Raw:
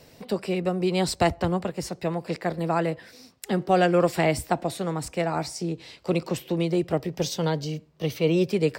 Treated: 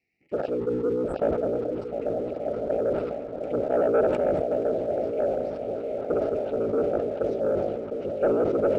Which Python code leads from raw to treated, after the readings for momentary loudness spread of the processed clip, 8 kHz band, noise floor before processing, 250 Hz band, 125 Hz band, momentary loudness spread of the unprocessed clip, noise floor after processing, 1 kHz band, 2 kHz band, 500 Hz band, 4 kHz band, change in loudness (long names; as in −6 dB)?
8 LU, below −20 dB, −54 dBFS, −4.5 dB, −11.0 dB, 10 LU, −36 dBFS, −6.0 dB, −10.0 dB, +3.0 dB, below −15 dB, −0.5 dB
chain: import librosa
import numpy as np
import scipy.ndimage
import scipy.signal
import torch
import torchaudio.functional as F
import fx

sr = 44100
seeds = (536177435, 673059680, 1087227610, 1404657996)

y = fx.cycle_switch(x, sr, every=3, mode='inverted')
y = fx.auto_wah(y, sr, base_hz=510.0, top_hz=2100.0, q=2.2, full_db=-22.0, direction='down')
y = fx.env_phaser(y, sr, low_hz=560.0, high_hz=4800.0, full_db=-27.0)
y = scipy.signal.sosfilt(scipy.signal.ellip(3, 1.0, 40, [620.0, 2300.0], 'bandstop', fs=sr, output='sos'), y)
y = fx.spec_erase(y, sr, start_s=0.57, length_s=0.64, low_hz=520.0, high_hz=7500.0)
y = fx.spacing_loss(y, sr, db_at_10k=23)
y = fx.echo_swing(y, sr, ms=1183, ratio=1.5, feedback_pct=51, wet_db=-8)
y = fx.leveller(y, sr, passes=1)
y = fx.low_shelf(y, sr, hz=82.0, db=8.0)
y = fx.small_body(y, sr, hz=(850.0, 1300.0), ring_ms=20, db=14)
y = fx.sustainer(y, sr, db_per_s=33.0)